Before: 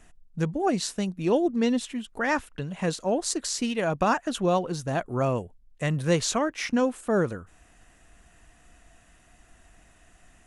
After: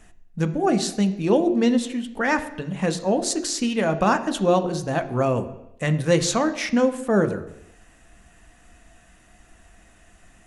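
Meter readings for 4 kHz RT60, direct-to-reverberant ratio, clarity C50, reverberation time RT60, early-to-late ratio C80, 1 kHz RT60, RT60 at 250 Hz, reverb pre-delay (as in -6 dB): 0.85 s, 7.0 dB, 13.0 dB, 0.80 s, 15.5 dB, 0.80 s, 0.80 s, 3 ms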